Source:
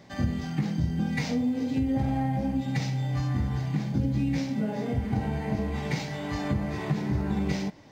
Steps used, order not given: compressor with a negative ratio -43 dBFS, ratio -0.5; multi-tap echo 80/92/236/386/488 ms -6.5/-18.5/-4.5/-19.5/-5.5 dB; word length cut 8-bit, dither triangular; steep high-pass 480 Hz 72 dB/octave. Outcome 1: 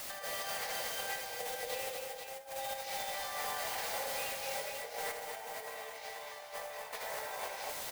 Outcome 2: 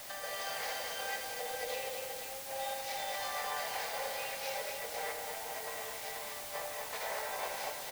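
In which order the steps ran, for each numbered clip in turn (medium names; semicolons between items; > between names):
steep high-pass > word length cut > compressor with a negative ratio > multi-tap echo; steep high-pass > compressor with a negative ratio > word length cut > multi-tap echo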